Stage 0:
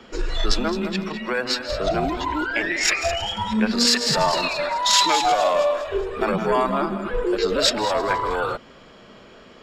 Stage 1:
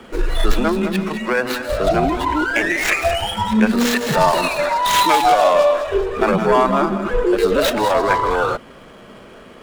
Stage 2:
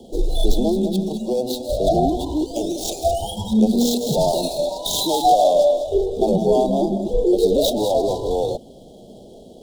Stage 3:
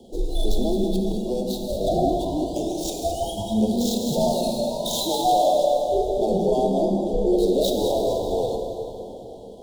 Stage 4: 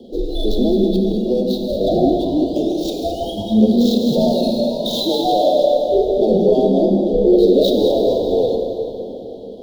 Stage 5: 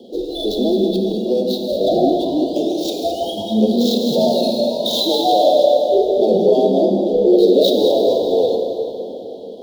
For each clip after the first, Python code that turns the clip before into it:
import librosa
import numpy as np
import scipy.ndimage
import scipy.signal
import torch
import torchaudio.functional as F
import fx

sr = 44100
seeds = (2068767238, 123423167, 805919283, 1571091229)

y1 = scipy.ndimage.median_filter(x, 9, mode='constant')
y1 = y1 * librosa.db_to_amplitude(6.0)
y2 = scipy.signal.sosfilt(scipy.signal.cheby1(4, 1.0, [770.0, 3500.0], 'bandstop', fs=sr, output='sos'), y1)
y3 = fx.rev_plate(y2, sr, seeds[0], rt60_s=3.8, hf_ratio=0.7, predelay_ms=0, drr_db=2.0)
y3 = y3 * librosa.db_to_amplitude(-5.5)
y4 = fx.graphic_eq(y3, sr, hz=(250, 500, 1000, 4000, 8000), db=(9, 8, -7, 9, -12))
y5 = fx.highpass(y4, sr, hz=420.0, slope=6)
y5 = y5 * librosa.db_to_amplitude(3.5)